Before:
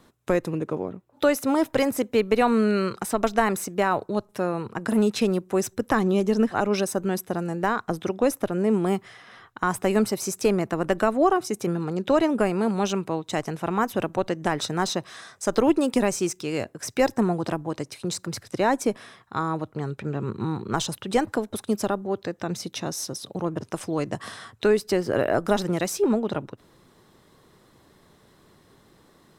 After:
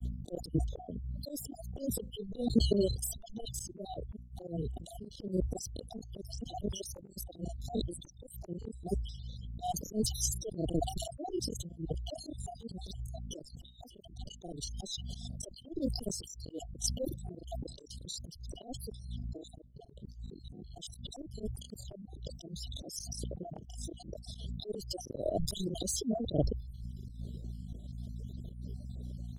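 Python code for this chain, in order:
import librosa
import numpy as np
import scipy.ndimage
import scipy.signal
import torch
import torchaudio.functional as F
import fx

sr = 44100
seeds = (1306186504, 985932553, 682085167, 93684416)

y = fx.spec_dropout(x, sr, seeds[0], share_pct=53)
y = fx.brickwall_bandstop(y, sr, low_hz=750.0, high_hz=2900.0)
y = fx.tilt_eq(y, sr, slope=-2.5)
y = fx.dmg_buzz(y, sr, base_hz=60.0, harmonics=4, level_db=-35.0, tilt_db=-7, odd_only=False)
y = fx.auto_swell(y, sr, attack_ms=376.0)
y = fx.high_shelf(y, sr, hz=2000.0, db=11.0)
y = fx.dereverb_blind(y, sr, rt60_s=1.4)
y = fx.granulator(y, sr, seeds[1], grain_ms=100.0, per_s=20.0, spray_ms=26.0, spread_st=0)
y = fx.dereverb_blind(y, sr, rt60_s=0.82)
y = fx.auto_swell(y, sr, attack_ms=112.0)
y = fx.sustainer(y, sr, db_per_s=81.0)
y = F.gain(torch.from_numpy(y), 1.0).numpy()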